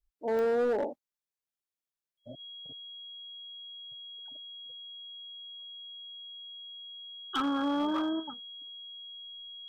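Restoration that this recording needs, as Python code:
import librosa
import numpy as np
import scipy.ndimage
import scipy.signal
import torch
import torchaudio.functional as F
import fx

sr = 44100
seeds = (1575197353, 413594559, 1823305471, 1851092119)

y = fx.fix_declip(x, sr, threshold_db=-24.5)
y = fx.fix_declick_ar(y, sr, threshold=10.0)
y = fx.notch(y, sr, hz=3300.0, q=30.0)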